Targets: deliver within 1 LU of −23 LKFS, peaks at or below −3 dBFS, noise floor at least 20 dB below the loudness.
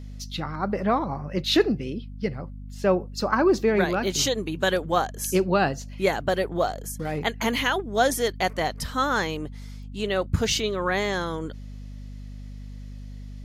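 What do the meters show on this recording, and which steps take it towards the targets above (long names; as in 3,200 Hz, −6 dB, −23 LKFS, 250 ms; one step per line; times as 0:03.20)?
mains hum 50 Hz; hum harmonics up to 250 Hz; level of the hum −36 dBFS; integrated loudness −25.0 LKFS; sample peak −7.0 dBFS; target loudness −23.0 LKFS
→ mains-hum notches 50/100/150/200/250 Hz
level +2 dB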